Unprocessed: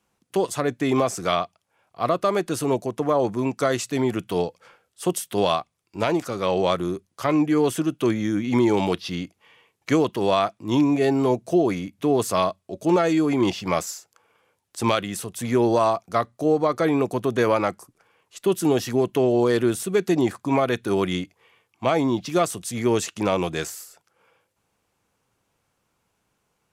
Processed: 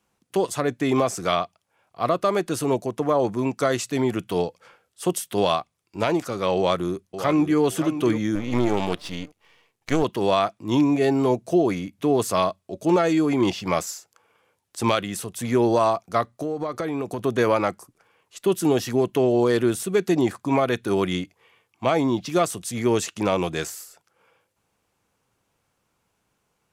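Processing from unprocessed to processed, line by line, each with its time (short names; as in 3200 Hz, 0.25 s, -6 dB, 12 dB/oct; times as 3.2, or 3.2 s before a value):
6.56–7.6 echo throw 0.57 s, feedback 30%, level -10.5 dB
8.35–10.03 half-wave gain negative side -12 dB
16.32–17.19 compressor, threshold -23 dBFS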